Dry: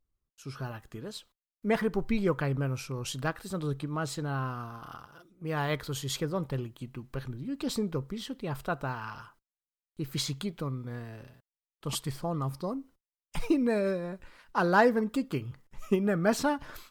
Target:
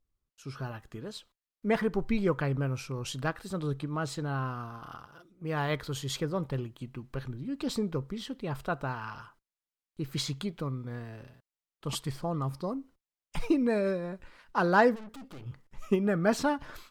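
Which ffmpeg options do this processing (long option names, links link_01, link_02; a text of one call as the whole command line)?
ffmpeg -i in.wav -filter_complex "[0:a]highshelf=frequency=9300:gain=-7.5,asplit=3[link_01][link_02][link_03];[link_01]afade=type=out:start_time=14.94:duration=0.02[link_04];[link_02]aeval=exprs='(tanh(158*val(0)+0.6)-tanh(0.6))/158':channel_layout=same,afade=type=in:start_time=14.94:duration=0.02,afade=type=out:start_time=15.45:duration=0.02[link_05];[link_03]afade=type=in:start_time=15.45:duration=0.02[link_06];[link_04][link_05][link_06]amix=inputs=3:normalize=0" out.wav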